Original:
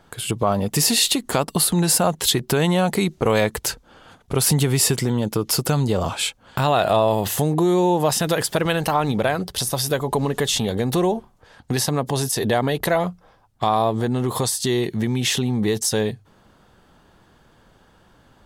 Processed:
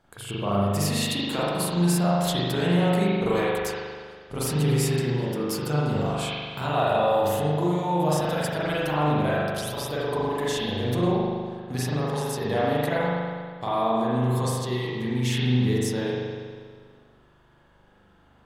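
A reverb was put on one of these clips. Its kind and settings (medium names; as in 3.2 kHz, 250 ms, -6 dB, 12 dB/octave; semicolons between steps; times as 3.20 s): spring tank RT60 1.8 s, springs 40 ms, chirp 70 ms, DRR -8 dB; trim -12.5 dB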